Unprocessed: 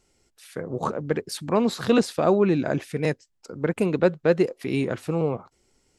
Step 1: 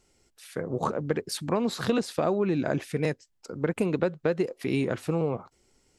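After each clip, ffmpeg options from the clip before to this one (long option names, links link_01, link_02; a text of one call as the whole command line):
ffmpeg -i in.wav -af "acompressor=threshold=-21dB:ratio=10" out.wav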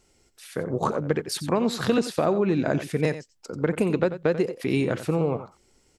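ffmpeg -i in.wav -af "aecho=1:1:90:0.224,volume=3dB" out.wav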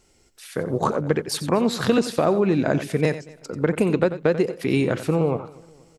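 ffmpeg -i in.wav -af "aecho=1:1:238|476|714:0.0668|0.0321|0.0154,volume=3dB" out.wav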